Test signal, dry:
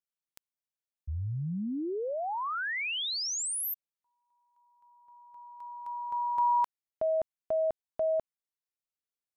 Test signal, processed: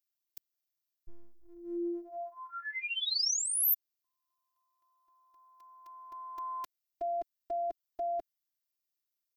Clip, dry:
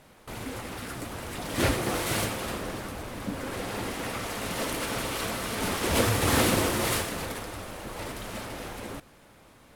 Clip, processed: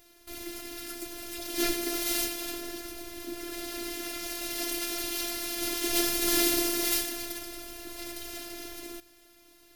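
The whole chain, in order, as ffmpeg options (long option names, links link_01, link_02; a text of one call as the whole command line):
ffmpeg -i in.wav -af "equalizer=frequency=125:width_type=o:width=1:gain=-8,equalizer=frequency=250:width_type=o:width=1:gain=3,equalizer=frequency=1000:width_type=o:width=1:gain=-10,equalizer=frequency=4000:width_type=o:width=1:gain=6,equalizer=frequency=8000:width_type=o:width=1:gain=-6,afftfilt=real='hypot(re,im)*cos(PI*b)':imag='0':win_size=512:overlap=0.75,aexciter=amount=3.6:drive=2.2:freq=5200" out.wav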